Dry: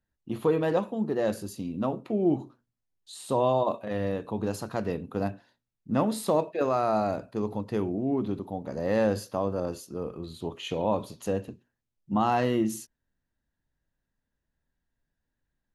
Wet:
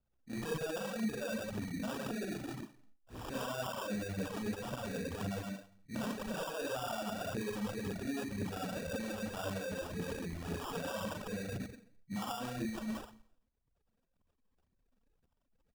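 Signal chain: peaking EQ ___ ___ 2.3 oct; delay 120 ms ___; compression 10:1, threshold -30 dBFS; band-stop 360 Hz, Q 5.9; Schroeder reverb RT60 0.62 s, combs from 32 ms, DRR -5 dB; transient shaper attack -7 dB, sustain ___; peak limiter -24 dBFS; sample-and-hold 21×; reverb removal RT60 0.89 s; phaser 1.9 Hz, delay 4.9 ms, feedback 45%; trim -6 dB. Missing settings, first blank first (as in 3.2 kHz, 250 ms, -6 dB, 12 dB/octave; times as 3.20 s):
91 Hz, +3 dB, -7.5 dB, +10 dB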